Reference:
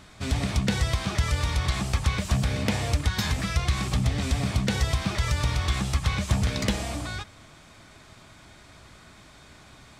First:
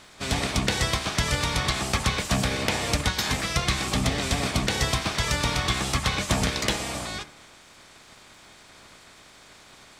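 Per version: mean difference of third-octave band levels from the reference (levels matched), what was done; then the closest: 4.0 dB: spectral peaks clipped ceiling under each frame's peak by 15 dB; de-hum 74.46 Hz, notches 36; crackle 170 per s -53 dBFS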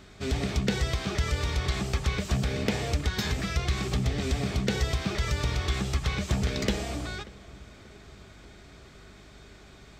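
2.0 dB: graphic EQ with 31 bands 100 Hz -7 dB, 400 Hz +10 dB, 1 kHz -5 dB, 10 kHz -11 dB; hum 50 Hz, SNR 25 dB; on a send: filtered feedback delay 585 ms, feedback 60%, level -21 dB; on the sum: trim -2 dB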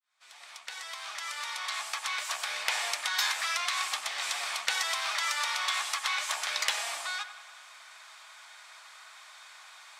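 14.5 dB: fade-in on the opening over 2.80 s; high-pass 880 Hz 24 dB/octave; on a send: feedback echo behind a low-pass 94 ms, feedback 62%, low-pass 3.2 kHz, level -12 dB; on the sum: trim +2.5 dB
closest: second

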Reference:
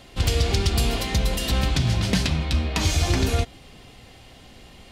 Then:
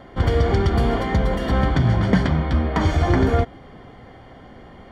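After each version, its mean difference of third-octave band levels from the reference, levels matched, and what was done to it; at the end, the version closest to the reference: 7.0 dB: Savitzky-Golay filter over 41 samples; bass shelf 89 Hz -8.5 dB; trim +7.5 dB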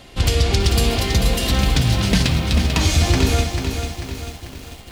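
4.5 dB: on a send: flutter echo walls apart 10.4 m, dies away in 0.2 s; on the sum: bit-crushed delay 442 ms, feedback 55%, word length 7-bit, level -6.5 dB; trim +4 dB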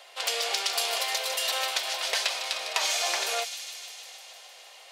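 14.0 dB: steep high-pass 540 Hz 36 dB/octave; feedback echo behind a high-pass 153 ms, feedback 75%, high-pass 3.1 kHz, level -7 dB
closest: second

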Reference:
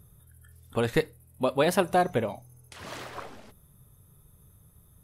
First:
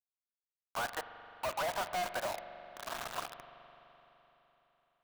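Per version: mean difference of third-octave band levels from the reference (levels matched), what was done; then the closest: 11.5 dB: elliptic band-pass 660–1600 Hz, stop band 40 dB; in parallel at +3 dB: level held to a coarse grid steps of 19 dB; on the sum: companded quantiser 2-bit; spring tank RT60 3.8 s, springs 42 ms, chirp 65 ms, DRR 10 dB; trim -8 dB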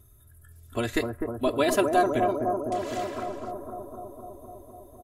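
7.0 dB: peaking EQ 7.1 kHz +6 dB 0.24 oct; band-stop 880 Hz, Q 5.6; comb 3 ms, depth 99%; bucket-brigade echo 252 ms, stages 2048, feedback 77%, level -4 dB; trim -2.5 dB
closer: second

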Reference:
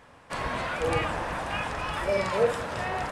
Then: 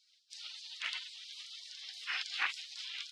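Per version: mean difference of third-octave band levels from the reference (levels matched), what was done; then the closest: 20.5 dB: distance through air 230 m; spectral gate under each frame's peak -30 dB weak; high-pass 1.2 kHz 12 dB/octave; random flutter of the level, depth 50%; trim +14.5 dB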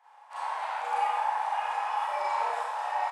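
13.0 dB: ladder high-pass 800 Hz, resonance 80%; on a send: delay 788 ms -10 dB; on the sum: Schroeder reverb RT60 1.1 s, combs from 29 ms, DRR -9.5 dB; trim -5.5 dB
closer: second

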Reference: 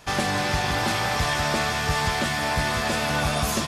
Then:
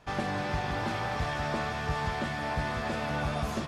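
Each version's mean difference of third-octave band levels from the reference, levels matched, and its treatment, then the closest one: 4.5 dB: low-pass 1.6 kHz 6 dB/octave; de-hum 93.42 Hz, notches 32; trim -5.5 dB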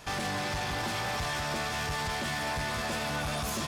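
1.5 dB: peak limiter -20.5 dBFS, peak gain reduction 7.5 dB; saturation -28 dBFS, distortion -13 dB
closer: second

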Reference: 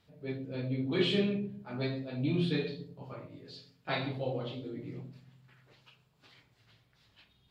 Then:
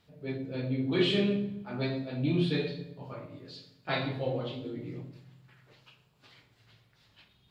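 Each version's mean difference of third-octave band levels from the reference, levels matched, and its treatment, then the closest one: 1.0 dB: plate-style reverb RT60 0.9 s, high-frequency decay 0.85×, DRR 9.5 dB; trim +2 dB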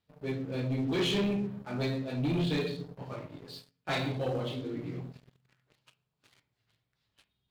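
5.0 dB: waveshaping leveller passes 3; trim -7 dB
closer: first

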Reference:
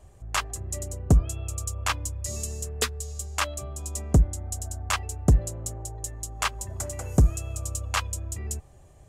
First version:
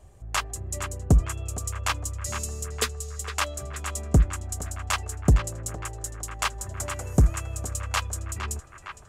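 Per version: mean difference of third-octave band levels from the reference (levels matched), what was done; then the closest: 3.5 dB: band-passed feedback delay 460 ms, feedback 72%, band-pass 1.5 kHz, level -7 dB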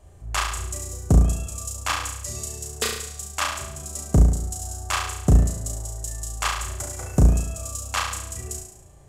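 7.0 dB: flutter echo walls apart 6 m, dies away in 0.73 s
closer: first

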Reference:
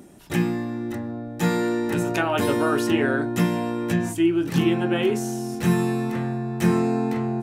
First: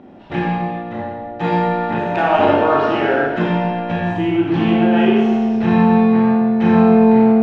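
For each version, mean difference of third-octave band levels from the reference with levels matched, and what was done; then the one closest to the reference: 8.0 dB: low-pass 3.5 kHz 24 dB/octave; peaking EQ 770 Hz +9 dB 0.85 oct; in parallel at -10 dB: saturation -20 dBFS, distortion -11 dB; on the sum: Schroeder reverb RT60 1.3 s, combs from 28 ms, DRR -4 dB; trim -2 dB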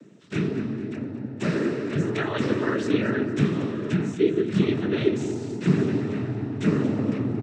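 6.0 dB: treble shelf 4.4 kHz -11 dB; noise-vocoded speech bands 12; peaking EQ 810 Hz -12 dB 0.89 oct; on a send: feedback delay 229 ms, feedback 46%, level -13.5 dB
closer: second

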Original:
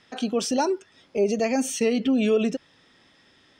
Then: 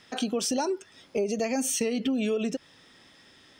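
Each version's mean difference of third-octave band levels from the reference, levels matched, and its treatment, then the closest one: 3.0 dB: treble shelf 8.3 kHz +11 dB; compression, threshold -26 dBFS, peak gain reduction 9.5 dB; trim +1.5 dB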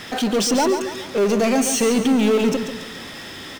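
9.5 dB: power-law waveshaper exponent 0.5; on a send: feedback delay 140 ms, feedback 44%, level -8.5 dB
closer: first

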